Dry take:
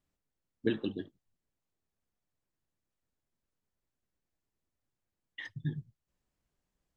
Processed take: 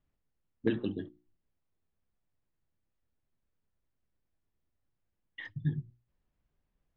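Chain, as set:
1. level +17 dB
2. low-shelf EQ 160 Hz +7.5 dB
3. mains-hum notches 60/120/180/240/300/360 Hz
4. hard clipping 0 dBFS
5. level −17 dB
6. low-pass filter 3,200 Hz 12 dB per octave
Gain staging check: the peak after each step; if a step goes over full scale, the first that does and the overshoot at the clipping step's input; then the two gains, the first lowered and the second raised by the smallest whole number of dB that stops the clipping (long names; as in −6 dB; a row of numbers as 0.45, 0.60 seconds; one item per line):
+2.5, +4.0, +3.5, 0.0, −17.0, −17.0 dBFS
step 1, 3.5 dB
step 1 +13 dB, step 5 −13 dB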